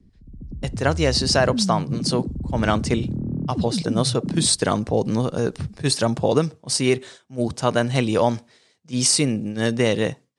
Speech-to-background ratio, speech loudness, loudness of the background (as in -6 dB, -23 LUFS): 6.0 dB, -22.0 LUFS, -28.0 LUFS